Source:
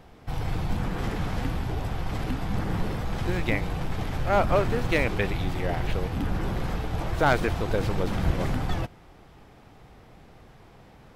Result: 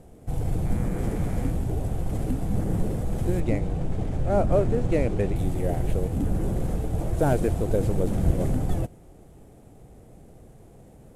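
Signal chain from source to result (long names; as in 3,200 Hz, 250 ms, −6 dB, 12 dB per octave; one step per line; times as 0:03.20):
variable-slope delta modulation 64 kbit/s
flat-topped bell 2,200 Hz −13.5 dB 3 octaves
0:00.64–0:01.50: hum with harmonics 120 Hz, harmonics 20, −52 dBFS −1 dB per octave
0:03.40–0:05.36: high-frequency loss of the air 66 metres
level +3 dB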